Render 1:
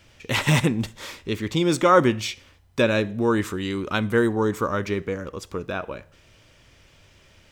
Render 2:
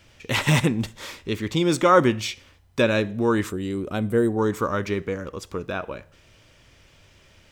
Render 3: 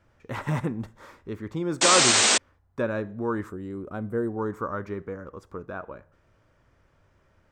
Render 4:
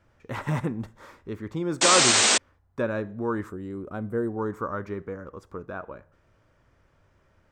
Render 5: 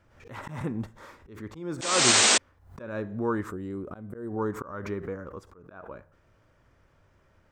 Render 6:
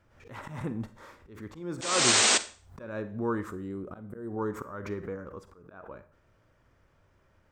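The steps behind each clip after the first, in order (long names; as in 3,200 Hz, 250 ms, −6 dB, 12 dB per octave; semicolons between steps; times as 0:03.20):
gain on a spectral selection 0:03.50–0:04.38, 780–7,200 Hz −9 dB
high shelf with overshoot 2,000 Hz −11.5 dB, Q 1.5; sound drawn into the spectrogram noise, 0:01.81–0:02.38, 200–8,800 Hz −12 dBFS; level −7.5 dB
no processing that can be heard
volume swells 280 ms; background raised ahead of every attack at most 93 dB per second
convolution reverb RT60 0.40 s, pre-delay 35 ms, DRR 14 dB; level −2.5 dB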